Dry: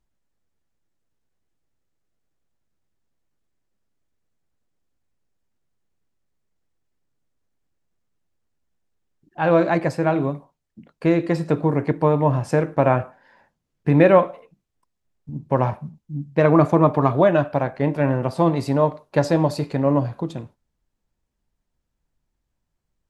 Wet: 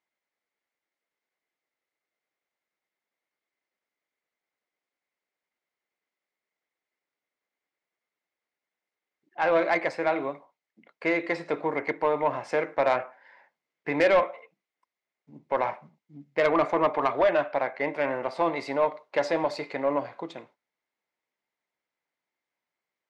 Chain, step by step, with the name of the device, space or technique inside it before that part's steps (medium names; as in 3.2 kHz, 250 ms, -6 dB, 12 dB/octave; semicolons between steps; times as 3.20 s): intercom (band-pass 500–4700 Hz; peaking EQ 2.1 kHz +12 dB 0.21 oct; saturation -12.5 dBFS, distortion -14 dB); trim -1.5 dB